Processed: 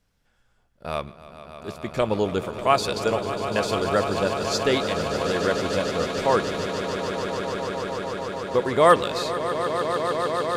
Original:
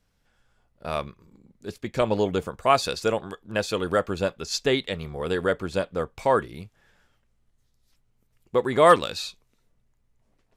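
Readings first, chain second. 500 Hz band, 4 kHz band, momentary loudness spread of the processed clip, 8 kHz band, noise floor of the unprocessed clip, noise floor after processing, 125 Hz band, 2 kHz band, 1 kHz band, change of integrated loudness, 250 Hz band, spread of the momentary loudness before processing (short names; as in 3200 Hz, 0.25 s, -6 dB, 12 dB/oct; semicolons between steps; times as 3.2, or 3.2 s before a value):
+2.0 dB, +2.5 dB, 10 LU, +2.5 dB, -70 dBFS, -65 dBFS, +2.5 dB, +2.5 dB, +2.5 dB, +0.5 dB, +2.5 dB, 16 LU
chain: swelling echo 0.148 s, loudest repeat 8, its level -12 dB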